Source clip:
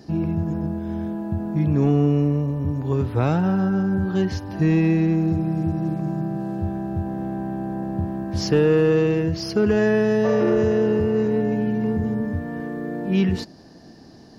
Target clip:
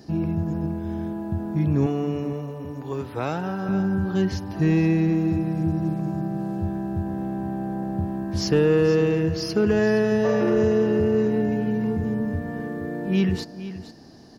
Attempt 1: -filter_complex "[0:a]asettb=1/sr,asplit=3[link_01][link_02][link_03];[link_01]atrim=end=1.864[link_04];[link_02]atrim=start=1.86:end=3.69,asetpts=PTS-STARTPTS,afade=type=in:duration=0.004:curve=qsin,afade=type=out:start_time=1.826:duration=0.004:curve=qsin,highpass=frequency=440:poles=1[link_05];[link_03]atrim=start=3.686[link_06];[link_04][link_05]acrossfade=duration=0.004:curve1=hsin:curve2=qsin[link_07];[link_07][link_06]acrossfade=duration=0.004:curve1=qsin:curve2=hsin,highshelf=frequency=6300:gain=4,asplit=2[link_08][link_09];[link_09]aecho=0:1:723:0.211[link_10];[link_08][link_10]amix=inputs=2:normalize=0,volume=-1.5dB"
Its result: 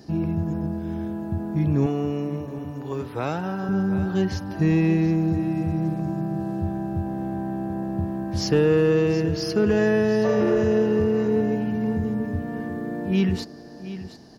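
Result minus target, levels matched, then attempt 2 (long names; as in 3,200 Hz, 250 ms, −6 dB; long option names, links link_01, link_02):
echo 255 ms late
-filter_complex "[0:a]asettb=1/sr,asplit=3[link_01][link_02][link_03];[link_01]atrim=end=1.864[link_04];[link_02]atrim=start=1.86:end=3.69,asetpts=PTS-STARTPTS,afade=type=in:duration=0.004:curve=qsin,afade=type=out:start_time=1.826:duration=0.004:curve=qsin,highpass=frequency=440:poles=1[link_05];[link_03]atrim=start=3.686[link_06];[link_04][link_05]acrossfade=duration=0.004:curve1=hsin:curve2=qsin[link_07];[link_07][link_06]acrossfade=duration=0.004:curve1=qsin:curve2=hsin,highshelf=frequency=6300:gain=4,asplit=2[link_08][link_09];[link_09]aecho=0:1:468:0.211[link_10];[link_08][link_10]amix=inputs=2:normalize=0,volume=-1.5dB"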